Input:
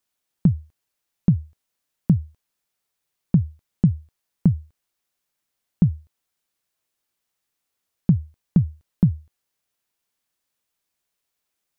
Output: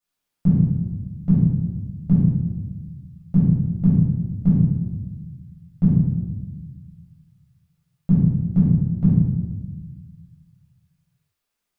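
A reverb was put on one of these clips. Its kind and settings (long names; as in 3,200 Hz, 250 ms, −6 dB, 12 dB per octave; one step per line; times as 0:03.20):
rectangular room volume 720 cubic metres, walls mixed, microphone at 6.9 metres
level −12 dB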